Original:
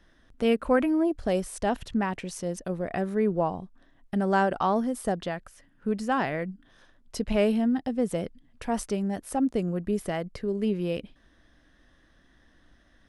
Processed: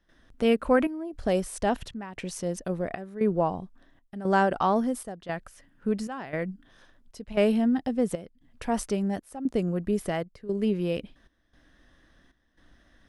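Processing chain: trance gate ".xxxxxxxxx.." 173 bpm -12 dB; trim +1 dB

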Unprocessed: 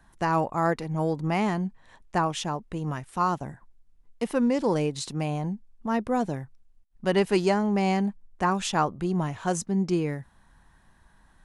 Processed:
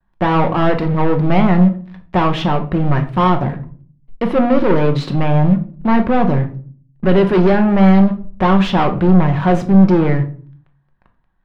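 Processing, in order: gate with hold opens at -54 dBFS; waveshaping leveller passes 5; distance through air 370 m; simulated room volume 380 m³, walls furnished, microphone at 1 m

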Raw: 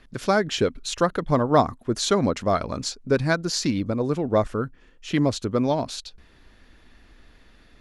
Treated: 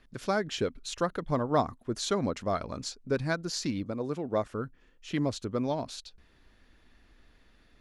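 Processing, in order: 3.84–4.54 s: high-pass 140 Hz 6 dB/octave; trim -8 dB

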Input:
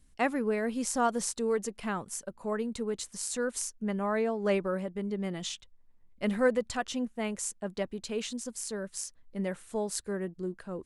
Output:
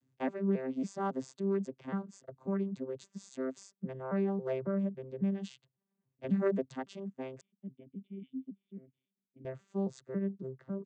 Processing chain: vocoder on a broken chord bare fifth, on C3, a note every 274 ms; 7.41–9.45 s: cascade formant filter i; trim -2.5 dB

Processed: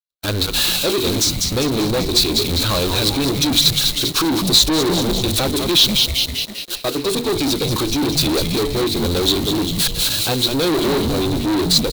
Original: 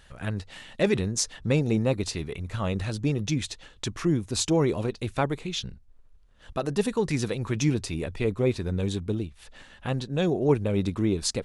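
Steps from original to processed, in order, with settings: zero-crossing glitches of -25 dBFS; recorder AGC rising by 40 dB/s; peak limiter -15.5 dBFS, peak gain reduction 7 dB; waveshaping leveller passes 1; Butterworth band-stop 2 kHz, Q 2.9; gate -22 dBFS, range -59 dB; resonant low shelf 250 Hz -6 dB, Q 3; hum notches 50/100/150/200/250/300/350/400/450/500 Hz; speed mistake 25 fps video run at 24 fps; frequency-shifting echo 197 ms, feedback 57%, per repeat -140 Hz, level -8.5 dB; waveshaping leveller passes 5; peaking EQ 4 kHz +15 dB 0.39 oct; trim -4 dB

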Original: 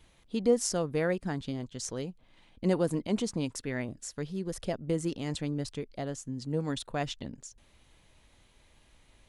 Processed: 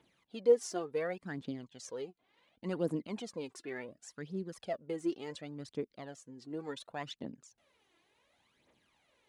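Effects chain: high-pass 230 Hz 12 dB/octave; treble shelf 5.2 kHz -11 dB; phaser 0.69 Hz, delay 3 ms, feedback 64%; trim -7 dB

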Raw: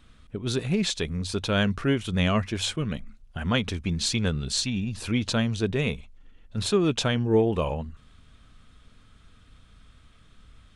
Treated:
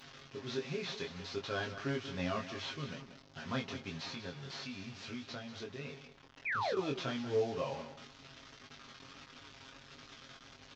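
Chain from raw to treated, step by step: one-bit delta coder 32 kbps, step -33.5 dBFS; high-pass 290 Hz 6 dB/octave; comb 7.4 ms, depth 69%; 4.03–6.77 s: compression, threshold -30 dBFS, peak gain reduction 13 dB; 6.45–6.76 s: painted sound fall 370–2600 Hz -24 dBFS; chorus 1.5 Hz, delay 20 ms, depth 2.5 ms; delay 187 ms -12 dB; trim -8 dB

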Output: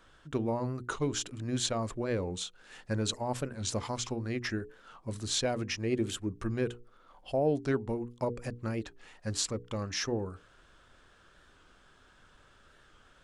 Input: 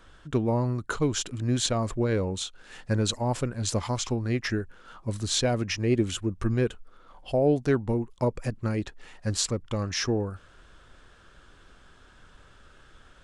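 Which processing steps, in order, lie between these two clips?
bass shelf 93 Hz -6 dB; hum notches 60/120/180/240/300/360/420/480 Hz; warped record 45 rpm, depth 100 cents; trim -4.5 dB

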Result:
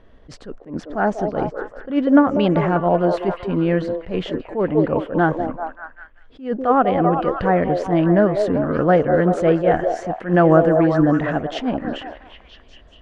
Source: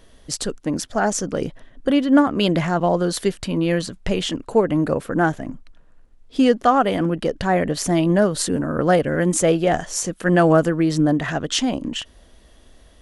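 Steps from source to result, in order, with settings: low-pass 1.9 kHz 12 dB/octave; repeats whose band climbs or falls 194 ms, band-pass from 520 Hz, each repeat 0.7 oct, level -2.5 dB; attacks held to a fixed rise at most 170 dB/s; trim +1.5 dB

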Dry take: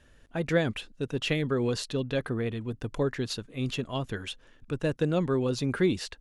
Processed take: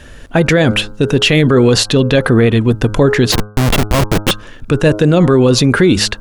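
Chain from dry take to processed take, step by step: 3.32–4.31 s: Schmitt trigger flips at -31.5 dBFS; de-hum 104.8 Hz, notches 15; loudness maximiser +24 dB; trim -1 dB

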